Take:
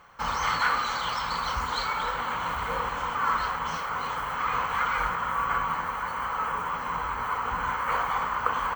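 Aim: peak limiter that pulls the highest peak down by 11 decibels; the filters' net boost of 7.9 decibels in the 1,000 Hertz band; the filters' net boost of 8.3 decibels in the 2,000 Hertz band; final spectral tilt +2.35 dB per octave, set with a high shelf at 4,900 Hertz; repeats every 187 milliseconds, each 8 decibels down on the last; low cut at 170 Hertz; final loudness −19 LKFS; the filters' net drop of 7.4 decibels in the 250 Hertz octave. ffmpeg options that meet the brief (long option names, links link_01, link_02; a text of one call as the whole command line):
ffmpeg -i in.wav -af "highpass=170,equalizer=frequency=250:width_type=o:gain=-8.5,equalizer=frequency=1000:width_type=o:gain=7,equalizer=frequency=2000:width_type=o:gain=9,highshelf=frequency=4900:gain=-4,alimiter=limit=-12.5dB:level=0:latency=1,aecho=1:1:187|374|561|748|935:0.398|0.159|0.0637|0.0255|0.0102,volume=2dB" out.wav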